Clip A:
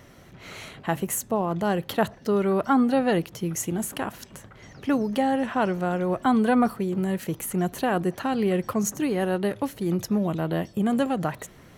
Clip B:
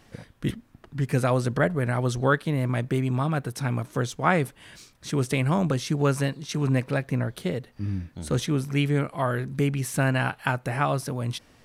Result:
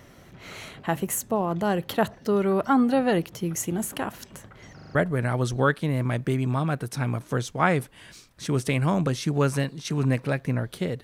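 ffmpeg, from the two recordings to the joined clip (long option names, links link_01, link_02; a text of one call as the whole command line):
ffmpeg -i cue0.wav -i cue1.wav -filter_complex "[0:a]apad=whole_dur=11.03,atrim=end=11.03,asplit=5[link_01][link_02][link_03][link_04][link_05];[link_01]atrim=end=4.792[link_06];[link_02]atrim=start=4.748:end=4.792[link_07];[link_03]atrim=start=4.748:end=4.792[link_08];[link_04]atrim=start=4.748:end=4.792[link_09];[link_05]atrim=start=4.748:end=4.792[link_10];[1:a]atrim=start=1.588:end=7.67[link_11];[link_06][link_07]acrossfade=duration=0.004:curve1=hsin:curve2=hsin[link_12];[link_12][link_08]acrossfade=duration=0.004:curve1=hsin:curve2=hsin[link_13];[link_13][link_09]acrossfade=duration=0.004:curve1=hsin:curve2=hsin[link_14];[link_14][link_10]acrossfade=duration=0.004:curve1=hsin:curve2=hsin[link_15];[link_15][link_11]acrossfade=duration=0.004:curve1=hsin:curve2=hsin" out.wav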